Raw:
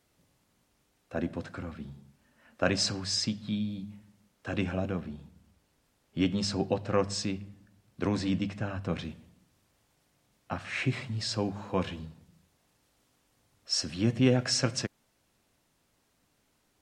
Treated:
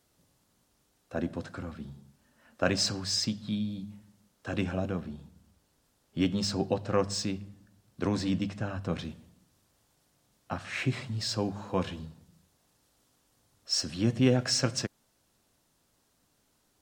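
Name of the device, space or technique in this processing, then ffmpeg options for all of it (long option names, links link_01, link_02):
exciter from parts: -filter_complex "[0:a]asplit=2[link_01][link_02];[link_02]highpass=frequency=2100:width=0.5412,highpass=frequency=2100:width=1.3066,asoftclip=type=tanh:threshold=-38.5dB,volume=-7dB[link_03];[link_01][link_03]amix=inputs=2:normalize=0"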